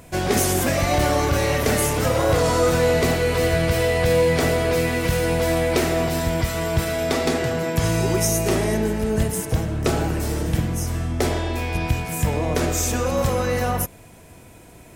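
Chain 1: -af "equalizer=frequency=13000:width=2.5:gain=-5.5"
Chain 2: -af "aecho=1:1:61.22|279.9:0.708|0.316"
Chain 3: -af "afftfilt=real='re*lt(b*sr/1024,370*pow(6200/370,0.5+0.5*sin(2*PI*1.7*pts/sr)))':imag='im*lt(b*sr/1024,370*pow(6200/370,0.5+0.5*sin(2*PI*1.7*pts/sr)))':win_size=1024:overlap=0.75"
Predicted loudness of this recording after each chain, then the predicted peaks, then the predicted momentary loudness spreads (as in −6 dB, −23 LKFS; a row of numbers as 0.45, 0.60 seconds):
−21.5, −18.5, −22.5 LKFS; −9.5, −5.0, −10.0 dBFS; 6, 6, 5 LU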